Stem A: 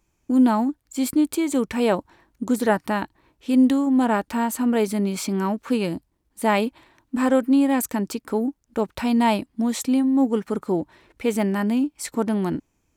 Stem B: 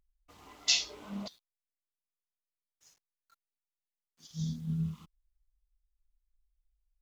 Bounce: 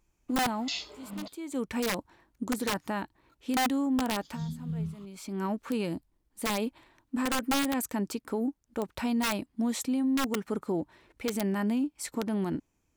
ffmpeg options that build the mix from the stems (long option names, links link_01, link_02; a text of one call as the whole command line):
ffmpeg -i stem1.wav -i stem2.wav -filter_complex "[0:a]aeval=exprs='(mod(3.98*val(0)+1,2)-1)/3.98':channel_layout=same,volume=-5.5dB[link_01];[1:a]highshelf=frequency=6300:gain=-7.5,bandreject=frequency=5800:width=5.5,volume=-0.5dB,asplit=2[link_02][link_03];[link_03]apad=whole_len=571536[link_04];[link_01][link_04]sidechaincompress=threshold=-58dB:ratio=4:attack=16:release=359[link_05];[link_05][link_02]amix=inputs=2:normalize=0,alimiter=limit=-22.5dB:level=0:latency=1:release=55" out.wav